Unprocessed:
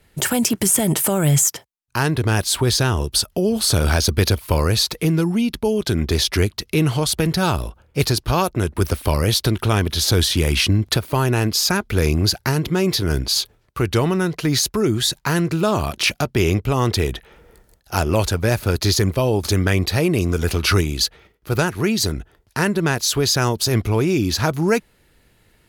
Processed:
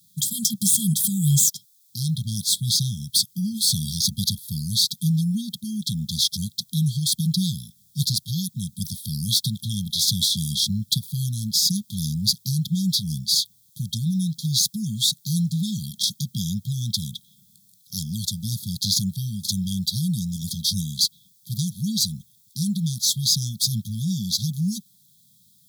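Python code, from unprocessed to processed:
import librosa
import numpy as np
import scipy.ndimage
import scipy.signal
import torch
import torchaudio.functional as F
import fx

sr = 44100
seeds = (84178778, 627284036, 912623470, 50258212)

y = fx.tracing_dist(x, sr, depth_ms=0.03)
y = scipy.signal.sosfilt(scipy.signal.butter(4, 140.0, 'highpass', fs=sr, output='sos'), y)
y = fx.dmg_noise_colour(y, sr, seeds[0], colour='blue', level_db=-59.0)
y = fx.brickwall_bandstop(y, sr, low_hz=220.0, high_hz=3200.0)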